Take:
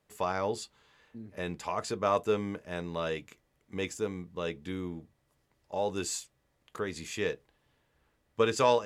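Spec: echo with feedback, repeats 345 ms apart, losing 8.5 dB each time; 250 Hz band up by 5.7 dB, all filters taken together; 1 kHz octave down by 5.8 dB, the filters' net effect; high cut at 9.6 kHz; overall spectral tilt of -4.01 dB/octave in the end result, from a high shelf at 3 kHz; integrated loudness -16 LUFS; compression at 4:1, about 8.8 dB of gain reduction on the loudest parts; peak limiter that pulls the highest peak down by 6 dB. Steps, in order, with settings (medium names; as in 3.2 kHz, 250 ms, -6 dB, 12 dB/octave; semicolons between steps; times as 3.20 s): low-pass 9.6 kHz; peaking EQ 250 Hz +8 dB; peaking EQ 1 kHz -8.5 dB; treble shelf 3 kHz +7 dB; compression 4:1, threshold -30 dBFS; peak limiter -25.5 dBFS; feedback delay 345 ms, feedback 38%, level -8.5 dB; trim +21.5 dB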